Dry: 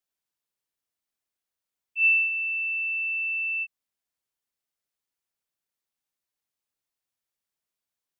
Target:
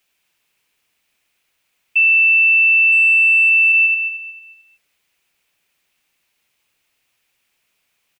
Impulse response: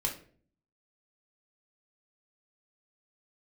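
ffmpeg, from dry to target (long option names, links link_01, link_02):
-filter_complex "[0:a]equalizer=frequency=2500:width_type=o:width=0.78:gain=11.5,asettb=1/sr,asplit=3[link_01][link_02][link_03];[link_01]atrim=end=2.924[link_04];[link_02]atrim=start=2.92:end=3.5,asetpts=PTS-STARTPTS,afade=type=in:duration=0.004:curve=qsin,afade=type=out:start_time=0.576:duration=0.004:curve=qsin,acontrast=29[link_05];[link_03]atrim=start=3.496[link_06];[link_04][link_05]acrossfade=duration=0.004:curve1=hsin:curve2=qsin[link_07];[link_07][link_06]acrossfade=duration=0.004:curve1=qsin:curve2=hsin,asplit=2[link_08][link_09];[link_09]adelay=223,lowpass=frequency=2500:poles=1,volume=-4dB,asplit=2[link_10][link_11];[link_11]adelay=223,lowpass=frequency=2500:poles=1,volume=0.4,asplit=2[link_12][link_13];[link_13]adelay=223,lowpass=frequency=2500:poles=1,volume=0.4,asplit=2[link_14][link_15];[link_15]adelay=223,lowpass=frequency=2500:poles=1,volume=0.4,asplit=2[link_16][link_17];[link_17]adelay=223,lowpass=frequency=2500:poles=1,volume=0.4[link_18];[link_10][link_12][link_14][link_16][link_18]amix=inputs=5:normalize=0[link_19];[link_08][link_19]amix=inputs=2:normalize=0,alimiter=level_in=24.5dB:limit=-1dB:release=50:level=0:latency=1,volume=-8dB"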